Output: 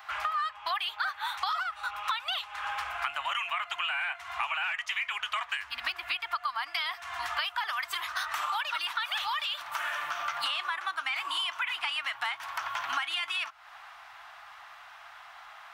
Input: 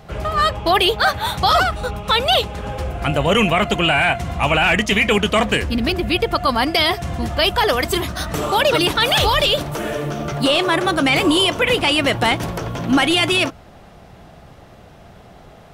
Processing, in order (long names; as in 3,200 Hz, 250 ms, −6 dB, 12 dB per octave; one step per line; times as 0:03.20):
inverse Chebyshev high-pass filter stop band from 520 Hz, stop band 40 dB
parametric band 10,000 Hz −15 dB 2.7 octaves
downward compressor 12 to 1, threshold −37 dBFS, peak gain reduction 20.5 dB
level +8 dB